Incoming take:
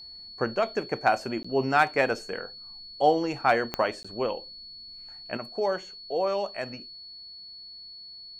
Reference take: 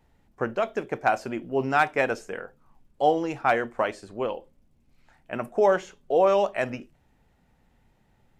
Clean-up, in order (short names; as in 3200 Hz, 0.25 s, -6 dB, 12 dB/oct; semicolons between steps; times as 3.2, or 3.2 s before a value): de-click; notch 4400 Hz, Q 30; interpolate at 1.43/4.03, 15 ms; gain correction +7 dB, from 5.37